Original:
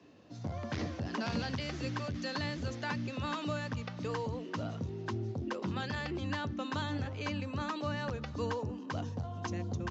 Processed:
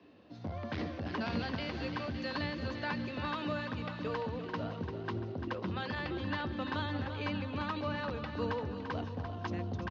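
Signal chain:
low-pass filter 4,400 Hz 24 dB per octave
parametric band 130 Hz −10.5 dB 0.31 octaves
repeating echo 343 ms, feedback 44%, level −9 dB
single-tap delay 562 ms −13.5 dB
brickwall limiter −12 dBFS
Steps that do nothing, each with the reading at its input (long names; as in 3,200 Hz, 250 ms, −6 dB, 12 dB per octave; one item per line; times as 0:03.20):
brickwall limiter −12 dBFS: peak of its input −23.0 dBFS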